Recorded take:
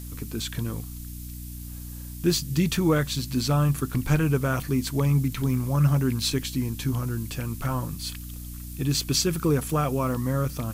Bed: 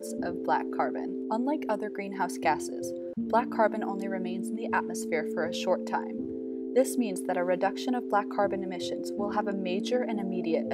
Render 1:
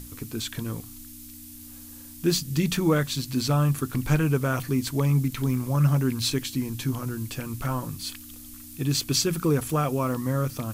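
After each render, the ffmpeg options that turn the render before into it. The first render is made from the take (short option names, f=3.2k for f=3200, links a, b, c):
-af "bandreject=f=60:t=h:w=6,bandreject=f=120:t=h:w=6,bandreject=f=180:t=h:w=6"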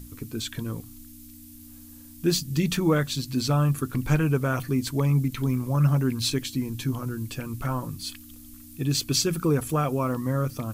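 -af "afftdn=nr=6:nf=-44"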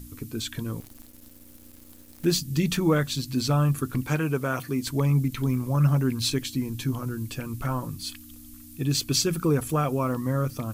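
-filter_complex "[0:a]asettb=1/sr,asplit=3[a][b][c];[a]atrim=end=0.804[d];[b]atrim=start=0.8:end=2.25,asetpts=PTS-STARTPTS,afade=t=in:d=0.004:c=qsin,afade=t=out:st=1.446:d=0.004:c=qsin,acrusher=bits=7:dc=4:mix=0:aa=0.000001[e];[c]atrim=start=2.246[f];[d][e]acrossfade=d=0.004:c1=hsin:c2=qsin[g];[g][f]acrossfade=d=0.004:c1=qsin:c2=hsin,asettb=1/sr,asplit=3[h][i][j];[h]atrim=end=4.034[k];[i]atrim=start=4.03:end=4.87,asetpts=PTS-STARTPTS,afade=t=in:d=0.004:c=qsin,afade=t=out:st=0.836:d=0.004:c=qsin,highpass=f=210:p=1[l];[j]atrim=start=4.866[m];[k][l]acrossfade=d=0.004:c1=hsin:c2=qsin[n];[n][m]acrossfade=d=0.004:c1=qsin:c2=hsin"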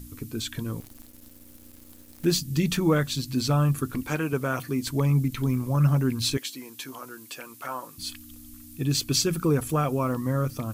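-filter_complex "[0:a]asettb=1/sr,asplit=3[a][b][c];[a]atrim=end=3.934[d];[b]atrim=start=3.93:end=4.33,asetpts=PTS-STARTPTS,afade=t=in:d=0.004:c=qsin,afade=t=out:st=0.396:d=0.004:c=qsin,equalizer=f=130:t=o:w=0.35:g=-12[e];[c]atrim=start=4.326[f];[d][e]acrossfade=d=0.004:c1=hsin:c2=qsin[g];[g][f]acrossfade=d=0.004:c1=qsin:c2=hsin,asettb=1/sr,asplit=3[h][i][j];[h]atrim=end=6.374[k];[i]atrim=start=6.37:end=7.98,asetpts=PTS-STARTPTS,afade=t=in:d=0.004:c=qsin,afade=t=out:st=1.606:d=0.004:c=qsin,highpass=530[l];[j]atrim=start=7.976[m];[k][l]acrossfade=d=0.004:c1=hsin:c2=qsin[n];[n][m]acrossfade=d=0.004:c1=qsin:c2=hsin"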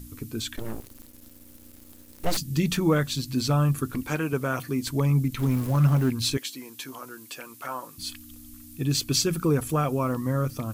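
-filter_complex "[0:a]asplit=3[a][b][c];[a]afade=t=out:st=0.56:d=0.02[d];[b]aeval=exprs='abs(val(0))':c=same,afade=t=in:st=0.56:d=0.02,afade=t=out:st=2.36:d=0.02[e];[c]afade=t=in:st=2.36:d=0.02[f];[d][e][f]amix=inputs=3:normalize=0,asettb=1/sr,asplit=3[g][h][i];[g]atrim=end=5.394[j];[h]atrim=start=5.39:end=6.1,asetpts=PTS-STARTPTS,afade=t=in:d=0.004:c=qsin,afade=t=out:st=0.706:d=0.004:c=qsin,aeval=exprs='val(0)+0.5*0.0224*sgn(val(0))':c=same[k];[i]atrim=start=6.096[l];[j][k]acrossfade=d=0.004:c1=hsin:c2=qsin[m];[m][l]acrossfade=d=0.004:c1=qsin:c2=hsin"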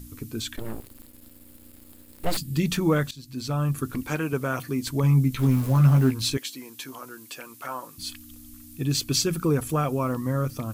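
-filter_complex "[0:a]asettb=1/sr,asplit=3[a][b][c];[a]atrim=end=0.564[d];[b]atrim=start=0.56:end=2.59,asetpts=PTS-STARTPTS,afade=t=in:d=0.004:c=qsin,afade=t=out:st=2.026:d=0.004:c=qsin,equalizer=f=6k:t=o:w=0.27:g=-9[e];[c]atrim=start=2.586[f];[d][e]acrossfade=d=0.004:c1=hsin:c2=qsin[g];[g][f]acrossfade=d=0.004:c1=qsin:c2=hsin,asettb=1/sr,asplit=3[h][i][j];[h]atrim=end=5.024[k];[i]atrim=start=5.02:end=6.22,asetpts=PTS-STARTPTS,afade=t=in:d=0.004:c=qsin,afade=t=out:st=1.196:d=0.004:c=qsin,asplit=2[l][m];[m]adelay=15,volume=-5dB[n];[l][n]amix=inputs=2:normalize=0,atrim=end_sample=52920[o];[j]atrim=start=6.216[p];[k][o]acrossfade=d=0.004:c1=hsin:c2=qsin[q];[q][p]acrossfade=d=0.004:c1=qsin:c2=hsin,asplit=2[r][s];[r]atrim=end=3.11,asetpts=PTS-STARTPTS,afade=t=out:st=3.106:d=0.004:c=hsin:silence=0.125893[t];[s]atrim=start=3.11,asetpts=PTS-STARTPTS,afade=t=in:d=0.78:silence=0.125893[u];[t][u]concat=n=2:v=0:a=1"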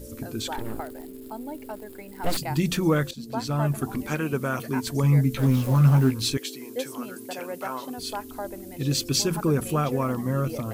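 -filter_complex "[1:a]volume=-7.5dB[a];[0:a][a]amix=inputs=2:normalize=0"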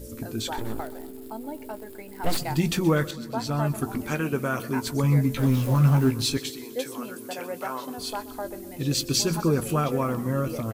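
-filter_complex "[0:a]asplit=2[a][b];[b]adelay=18,volume=-12.5dB[c];[a][c]amix=inputs=2:normalize=0,aecho=1:1:127|254|381|508|635:0.119|0.0689|0.04|0.0232|0.0134"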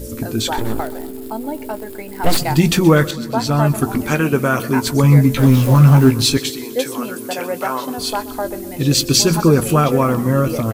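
-af "volume=10.5dB,alimiter=limit=-1dB:level=0:latency=1"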